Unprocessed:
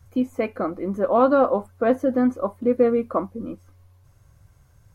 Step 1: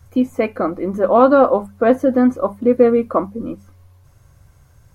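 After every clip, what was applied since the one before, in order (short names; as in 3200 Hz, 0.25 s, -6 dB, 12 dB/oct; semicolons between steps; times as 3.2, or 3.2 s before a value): notches 50/100/150/200 Hz; gain +6 dB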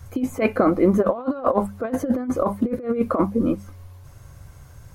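negative-ratio compressor -19 dBFS, ratio -0.5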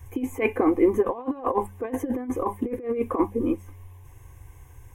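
fixed phaser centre 910 Hz, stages 8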